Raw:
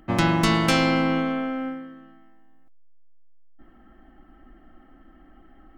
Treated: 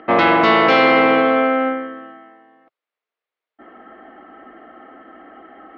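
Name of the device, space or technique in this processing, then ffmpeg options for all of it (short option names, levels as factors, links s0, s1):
overdrive pedal into a guitar cabinet: -filter_complex "[0:a]asplit=2[s0][s1];[s1]highpass=f=720:p=1,volume=12.6,asoftclip=type=tanh:threshold=0.501[s2];[s0][s2]amix=inputs=2:normalize=0,lowpass=f=1900:p=1,volume=0.501,highpass=93,equalizer=f=110:t=q:w=4:g=-7,equalizer=f=160:t=q:w=4:g=-7,equalizer=f=450:t=q:w=4:g=10,equalizer=f=660:t=q:w=4:g=5,equalizer=f=1200:t=q:w=4:g=4,equalizer=f=2100:t=q:w=4:g=4,lowpass=f=4100:w=0.5412,lowpass=f=4100:w=1.3066"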